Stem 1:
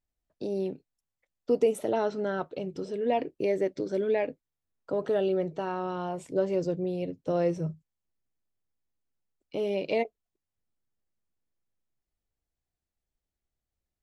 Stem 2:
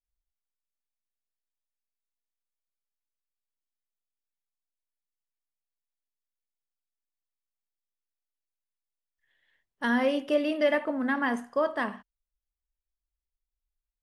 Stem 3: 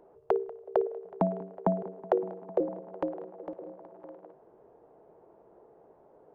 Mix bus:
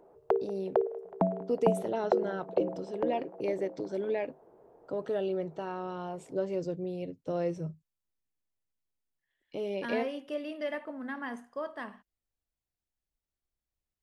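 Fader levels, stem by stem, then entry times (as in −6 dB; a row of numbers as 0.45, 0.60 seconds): −5.0, −10.5, −0.5 decibels; 0.00, 0.00, 0.00 seconds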